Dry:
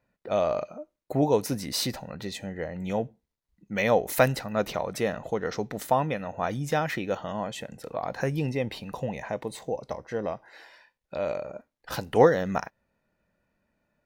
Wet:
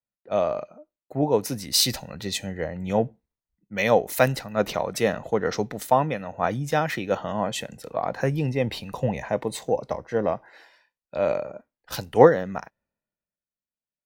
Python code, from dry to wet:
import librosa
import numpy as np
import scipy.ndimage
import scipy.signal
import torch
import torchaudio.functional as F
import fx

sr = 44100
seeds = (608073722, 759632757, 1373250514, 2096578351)

y = fx.rider(x, sr, range_db=4, speed_s=0.5)
y = fx.band_widen(y, sr, depth_pct=70)
y = y * librosa.db_to_amplitude(2.5)